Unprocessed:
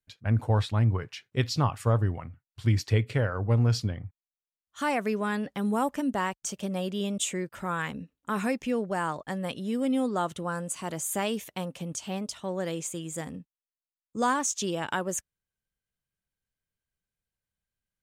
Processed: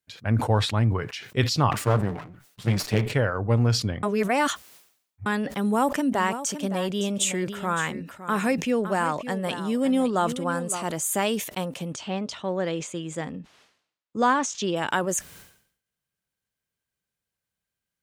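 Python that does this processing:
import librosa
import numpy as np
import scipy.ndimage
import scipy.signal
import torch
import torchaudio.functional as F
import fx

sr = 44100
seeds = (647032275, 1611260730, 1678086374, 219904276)

y = fx.lower_of_two(x, sr, delay_ms=6.8, at=(1.71, 3.12))
y = fx.echo_single(y, sr, ms=563, db=-12.5, at=(6.13, 10.86), fade=0.02)
y = fx.lowpass(y, sr, hz=4200.0, slope=12, at=(11.92, 14.75), fade=0.02)
y = fx.edit(y, sr, fx.reverse_span(start_s=4.03, length_s=1.23), tone=tone)
y = fx.highpass(y, sr, hz=140.0, slope=6)
y = fx.sustainer(y, sr, db_per_s=95.0)
y = F.gain(torch.from_numpy(y), 5.0).numpy()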